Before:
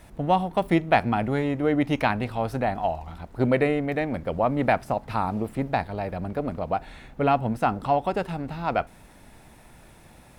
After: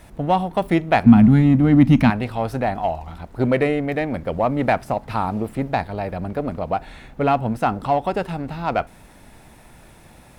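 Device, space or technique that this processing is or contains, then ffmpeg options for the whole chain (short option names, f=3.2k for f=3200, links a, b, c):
parallel distortion: -filter_complex "[0:a]asettb=1/sr,asplit=3[a][b][c];[a]atrim=end=1.064[d];[b]atrim=start=1.06:end=2.1,asetpts=PTS-STARTPTS,afade=t=in:d=0.004:c=qsin,afade=t=out:st=1.036:d=0.004:c=qsin,lowshelf=f=310:t=q:w=3:g=10[e];[c]atrim=start=2.096[f];[d][e]acrossfade=d=0.004:c1=hsin:c2=qsin[g];[g][f]acrossfade=d=0.004:c1=qsin:c2=hsin,asplit=2[h][i];[i]asoftclip=type=hard:threshold=-20.5dB,volume=-11dB[j];[h][j]amix=inputs=2:normalize=0,volume=1.5dB"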